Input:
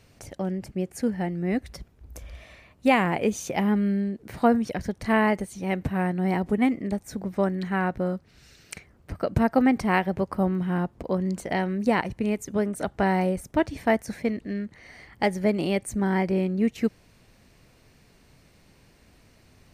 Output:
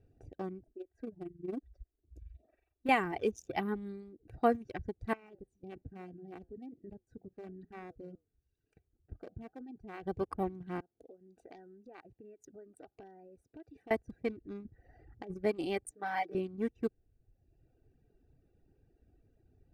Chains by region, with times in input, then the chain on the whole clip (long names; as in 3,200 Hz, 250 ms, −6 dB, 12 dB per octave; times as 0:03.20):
0:00.63–0:02.89: comb filter 3.1 ms, depth 42% + amplitude modulation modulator 22 Hz, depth 40% + phaser with staggered stages 1.1 Hz
0:05.13–0:10.03: output level in coarse steps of 15 dB + flanger 1.1 Hz, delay 5.8 ms, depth 7.1 ms, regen −78%
0:10.80–0:13.91: downward compressor 10 to 1, threshold −31 dBFS + high-pass filter 610 Hz 6 dB per octave + highs frequency-modulated by the lows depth 0.17 ms
0:14.65–0:15.34: compressor whose output falls as the input rises −31 dBFS + low-pass filter 2,800 Hz 6 dB per octave
0:15.91–0:16.35: high-pass filter 450 Hz + comb filter 6.6 ms, depth 97%
whole clip: adaptive Wiener filter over 41 samples; reverb reduction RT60 1.1 s; comb filter 2.6 ms, depth 49%; level −7.5 dB